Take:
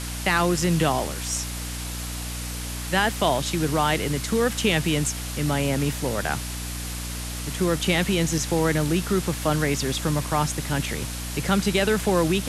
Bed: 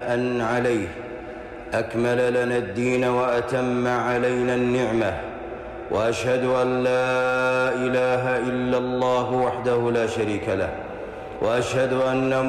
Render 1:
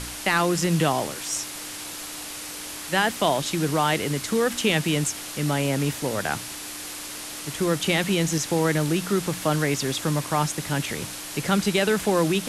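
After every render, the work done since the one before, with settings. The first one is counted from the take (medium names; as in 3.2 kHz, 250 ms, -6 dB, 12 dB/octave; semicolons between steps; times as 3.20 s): de-hum 60 Hz, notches 4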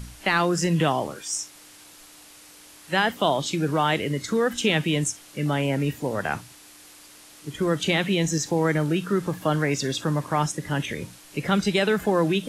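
noise print and reduce 13 dB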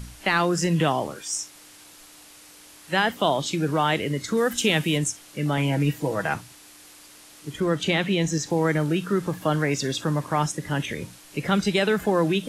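4.37–4.98 s: treble shelf 7.9 kHz +10.5 dB; 5.57–6.34 s: comb 6.2 ms, depth 61%; 7.60–8.50 s: treble shelf 8.2 kHz -7 dB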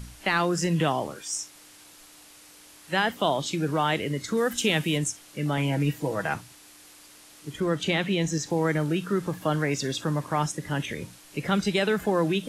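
trim -2.5 dB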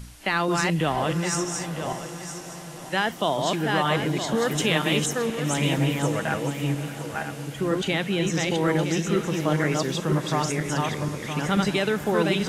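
backward echo that repeats 482 ms, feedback 45%, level -2 dB; echo that smears into a reverb 633 ms, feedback 60%, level -14 dB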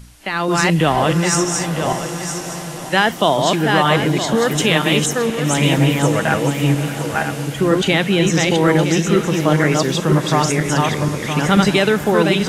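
level rider gain up to 11.5 dB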